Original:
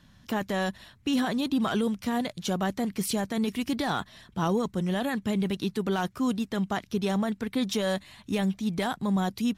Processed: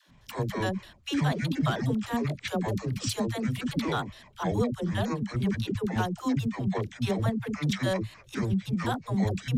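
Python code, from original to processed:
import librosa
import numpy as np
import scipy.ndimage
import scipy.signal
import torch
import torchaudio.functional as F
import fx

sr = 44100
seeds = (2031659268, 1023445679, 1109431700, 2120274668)

y = fx.pitch_trill(x, sr, semitones=-9.5, every_ms=103)
y = fx.dispersion(y, sr, late='lows', ms=90.0, hz=430.0)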